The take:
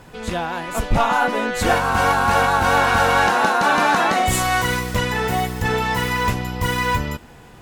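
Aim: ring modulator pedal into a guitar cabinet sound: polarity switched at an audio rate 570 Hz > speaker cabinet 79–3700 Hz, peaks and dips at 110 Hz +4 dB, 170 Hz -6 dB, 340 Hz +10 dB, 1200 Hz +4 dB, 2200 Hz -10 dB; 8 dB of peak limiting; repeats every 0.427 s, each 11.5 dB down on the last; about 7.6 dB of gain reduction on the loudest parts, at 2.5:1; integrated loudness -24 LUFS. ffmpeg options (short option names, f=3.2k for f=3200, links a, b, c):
-af "acompressor=threshold=-24dB:ratio=2.5,alimiter=limit=-19dB:level=0:latency=1,aecho=1:1:427|854|1281:0.266|0.0718|0.0194,aeval=exprs='val(0)*sgn(sin(2*PI*570*n/s))':c=same,highpass=79,equalizer=f=110:t=q:w=4:g=4,equalizer=f=170:t=q:w=4:g=-6,equalizer=f=340:t=q:w=4:g=10,equalizer=f=1.2k:t=q:w=4:g=4,equalizer=f=2.2k:t=q:w=4:g=-10,lowpass=f=3.7k:w=0.5412,lowpass=f=3.7k:w=1.3066,volume=3dB"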